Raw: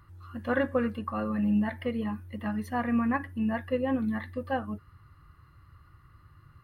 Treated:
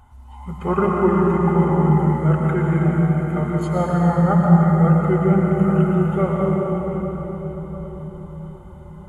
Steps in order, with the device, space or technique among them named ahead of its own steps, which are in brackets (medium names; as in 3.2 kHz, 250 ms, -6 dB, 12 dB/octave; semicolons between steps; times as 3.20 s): slowed and reverbed (tape speed -27%; reverberation RT60 5.2 s, pre-delay 94 ms, DRR -3 dB); trim +7 dB